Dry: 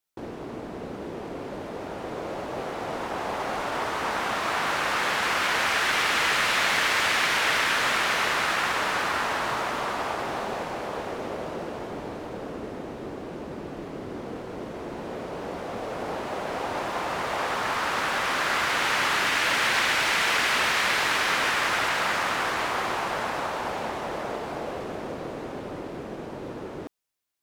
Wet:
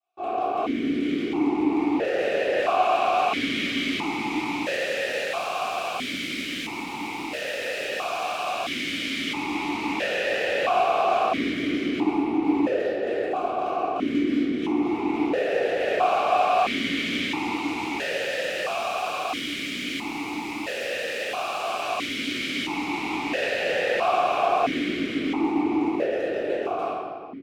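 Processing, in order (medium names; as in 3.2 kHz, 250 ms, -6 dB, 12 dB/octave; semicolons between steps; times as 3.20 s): comb 2.7 ms, depth 42%; integer overflow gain 26.5 dB; reverberation RT60 1.8 s, pre-delay 3 ms, DRR -19.5 dB; stepped vowel filter 1.5 Hz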